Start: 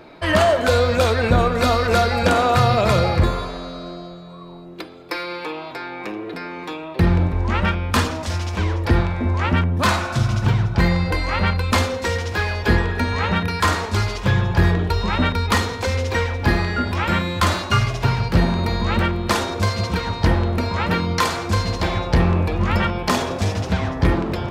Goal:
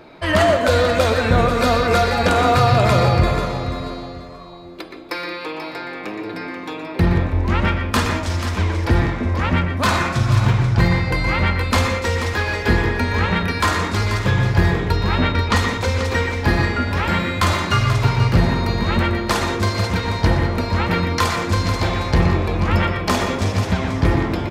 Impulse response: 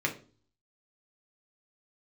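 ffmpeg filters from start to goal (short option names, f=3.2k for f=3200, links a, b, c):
-filter_complex "[0:a]asettb=1/sr,asplit=3[a][b][c];[a]atrim=end=14.964[d];[b]atrim=start=14.96:end=15.56,asetpts=PTS-STARTPTS,afade=t=in:d=0.004:c=qsin,afade=t=out:st=0.596:d=0.004:c=qsin,lowpass=6.3k[e];[c]atrim=start=15.556[f];[d][e]acrossfade=d=0.004:c1=hsin:c2=qsin[g];[g][f]acrossfade=d=0.004:c1=qsin:c2=hsin,aecho=1:1:486|972|1458:0.316|0.0791|0.0198,asplit=2[h][i];[1:a]atrim=start_sample=2205,adelay=119[j];[i][j]afir=irnorm=-1:irlink=0,volume=-13dB[k];[h][k]amix=inputs=2:normalize=0"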